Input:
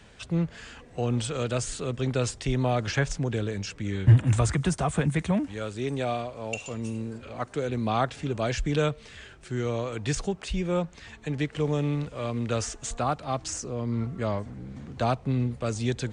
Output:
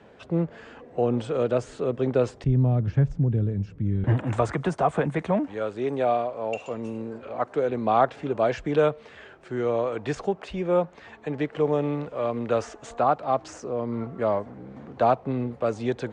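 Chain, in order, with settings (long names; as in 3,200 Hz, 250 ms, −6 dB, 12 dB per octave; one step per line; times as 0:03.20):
resonant band-pass 490 Hz, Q 0.88, from 0:02.44 120 Hz, from 0:04.04 660 Hz
level +7.5 dB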